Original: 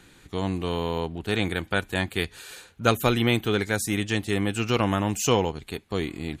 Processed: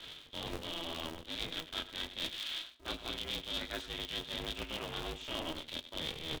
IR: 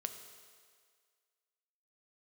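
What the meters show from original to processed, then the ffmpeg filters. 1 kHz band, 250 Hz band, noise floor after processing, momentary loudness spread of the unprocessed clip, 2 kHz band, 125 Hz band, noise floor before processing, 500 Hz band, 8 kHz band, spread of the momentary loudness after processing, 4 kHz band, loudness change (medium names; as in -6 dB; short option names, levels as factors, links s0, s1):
-16.5 dB, -20.0 dB, -56 dBFS, 9 LU, -14.5 dB, -22.0 dB, -55 dBFS, -18.5 dB, -17.0 dB, 4 LU, -4.0 dB, -13.0 dB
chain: -filter_complex "[0:a]acrossover=split=240|2000[s0][s1][s2];[s2]aeval=exprs='clip(val(0),-1,0.0266)':c=same[s3];[s0][s1][s3]amix=inputs=3:normalize=0,lowpass=f=3400:t=q:w=14,areverse,acompressor=threshold=0.0224:ratio=10,areverse,highpass=91,aecho=1:1:99:0.188,flanger=delay=17.5:depth=6.9:speed=1.3,aeval=exprs='val(0)*sgn(sin(2*PI*160*n/s))':c=same"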